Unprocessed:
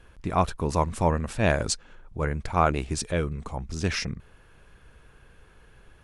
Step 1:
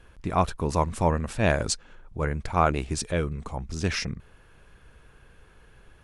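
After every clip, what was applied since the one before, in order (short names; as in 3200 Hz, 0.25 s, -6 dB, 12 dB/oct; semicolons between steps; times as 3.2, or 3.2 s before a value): nothing audible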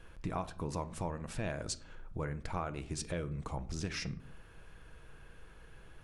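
compressor 6:1, threshold -33 dBFS, peak gain reduction 16.5 dB; reverb RT60 0.55 s, pre-delay 6 ms, DRR 10.5 dB; gain -2 dB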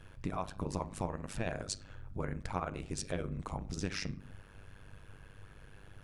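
AM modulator 99 Hz, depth 85%; gain +4 dB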